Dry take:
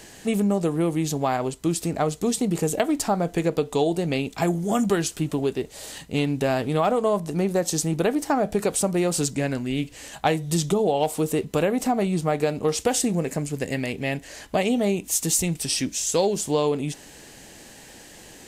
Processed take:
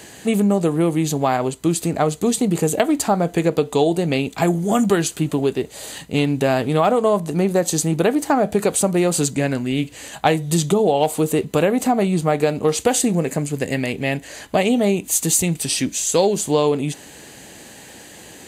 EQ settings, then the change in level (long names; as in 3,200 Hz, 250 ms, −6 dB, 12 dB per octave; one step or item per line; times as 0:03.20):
high-pass filter 69 Hz
notch filter 5,400 Hz, Q 6.6
+5.0 dB